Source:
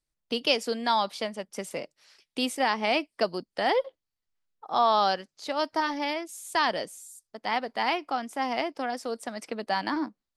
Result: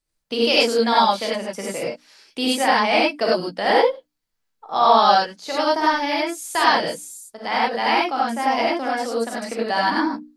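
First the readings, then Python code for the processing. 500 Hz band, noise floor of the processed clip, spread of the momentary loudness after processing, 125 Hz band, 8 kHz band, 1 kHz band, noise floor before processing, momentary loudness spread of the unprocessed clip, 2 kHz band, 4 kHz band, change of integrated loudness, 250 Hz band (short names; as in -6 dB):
+9.0 dB, -75 dBFS, 12 LU, n/a, +8.5 dB, +9.0 dB, under -85 dBFS, 12 LU, +9.0 dB, +8.0 dB, +8.5 dB, +8.5 dB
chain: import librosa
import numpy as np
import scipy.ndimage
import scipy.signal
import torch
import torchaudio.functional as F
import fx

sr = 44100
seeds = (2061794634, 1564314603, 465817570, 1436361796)

y = fx.hum_notches(x, sr, base_hz=60, count=5)
y = fx.rev_gated(y, sr, seeds[0], gate_ms=120, shape='rising', drr_db=-5.0)
y = F.gain(torch.from_numpy(y), 2.5).numpy()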